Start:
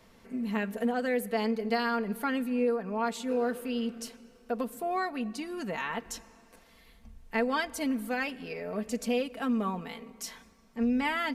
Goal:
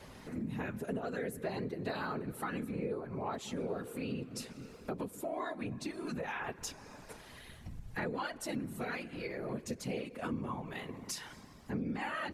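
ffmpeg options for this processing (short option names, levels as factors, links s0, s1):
-af "afftfilt=real='hypot(re,im)*cos(2*PI*random(0))':imag='hypot(re,im)*sin(2*PI*random(1))':win_size=512:overlap=0.75,acompressor=threshold=0.00224:ratio=3,asetrate=40572,aresample=44100,volume=4.22"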